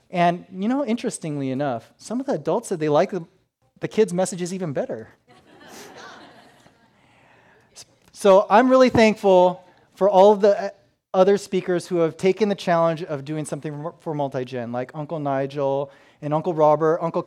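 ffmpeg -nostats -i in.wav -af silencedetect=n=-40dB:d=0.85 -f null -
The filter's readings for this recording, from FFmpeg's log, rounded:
silence_start: 6.67
silence_end: 7.77 | silence_duration: 1.10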